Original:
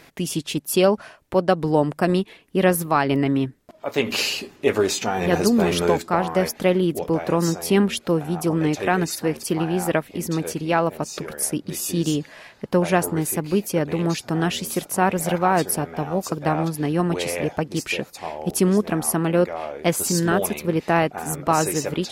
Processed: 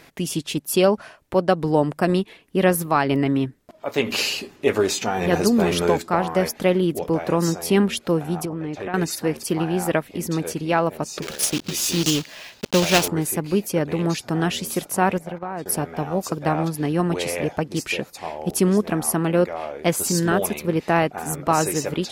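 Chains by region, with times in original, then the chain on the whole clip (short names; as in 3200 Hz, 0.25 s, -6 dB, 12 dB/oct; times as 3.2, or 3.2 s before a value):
8.45–8.94 LPF 2200 Hz 6 dB/oct + compressor, threshold -25 dBFS
11.22–13.08 block floating point 3-bit + band shelf 4100 Hz +8 dB
15.18–15.66 gate -25 dBFS, range -12 dB + high shelf 3400 Hz -11.5 dB + compressor 3:1, threshold -29 dBFS
whole clip: dry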